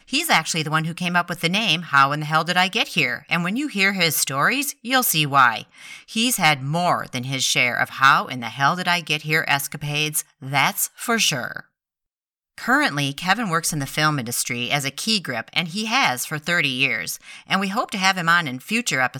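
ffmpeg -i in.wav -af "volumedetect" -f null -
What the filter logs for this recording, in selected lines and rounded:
mean_volume: -21.7 dB
max_volume: -3.6 dB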